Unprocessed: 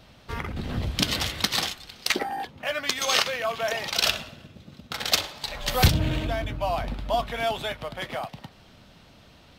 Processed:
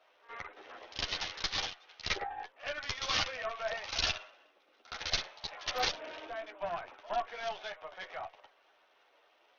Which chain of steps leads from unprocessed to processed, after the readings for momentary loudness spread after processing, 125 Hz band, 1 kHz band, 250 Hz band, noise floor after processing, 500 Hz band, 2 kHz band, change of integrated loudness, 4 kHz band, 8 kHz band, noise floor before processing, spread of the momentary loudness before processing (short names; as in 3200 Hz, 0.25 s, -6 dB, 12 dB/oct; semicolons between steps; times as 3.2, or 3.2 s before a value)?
14 LU, -22.5 dB, -8.5 dB, -20.5 dB, -68 dBFS, -10.5 dB, -8.5 dB, -10.0 dB, -9.0 dB, -12.5 dB, -53 dBFS, 12 LU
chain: Wiener smoothing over 9 samples; Bessel high-pass 650 Hz, order 8; pre-echo 67 ms -16.5 dB; tube stage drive 20 dB, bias 0.7; chorus voices 4, 0.64 Hz, delay 11 ms, depth 1.5 ms; SBC 64 kbps 48000 Hz